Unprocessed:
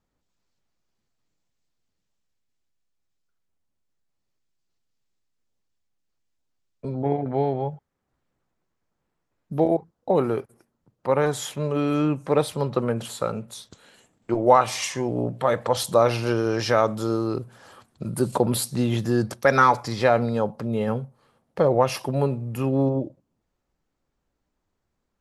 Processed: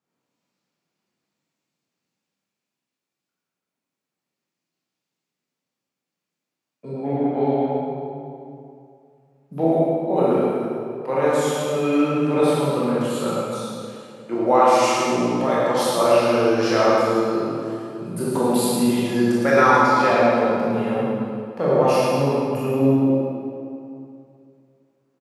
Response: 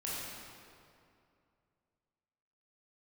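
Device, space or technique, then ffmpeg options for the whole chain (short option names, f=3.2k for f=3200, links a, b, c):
PA in a hall: -filter_complex "[0:a]highpass=f=150:w=0.5412,highpass=f=150:w=1.3066,equalizer=f=2.4k:t=o:w=0.23:g=4,aecho=1:1:108:0.447[a];[1:a]atrim=start_sample=2205[b];[a][b]afir=irnorm=-1:irlink=0"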